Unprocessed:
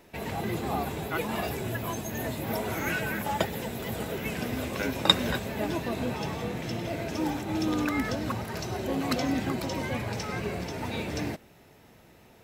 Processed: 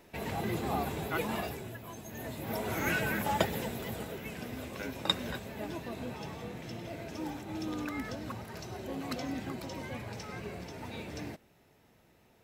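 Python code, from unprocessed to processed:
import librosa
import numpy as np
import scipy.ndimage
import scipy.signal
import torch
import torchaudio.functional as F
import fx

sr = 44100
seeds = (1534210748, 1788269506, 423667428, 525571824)

y = fx.gain(x, sr, db=fx.line((1.31, -2.5), (1.82, -13.5), (2.87, -1.0), (3.57, -1.0), (4.25, -9.0)))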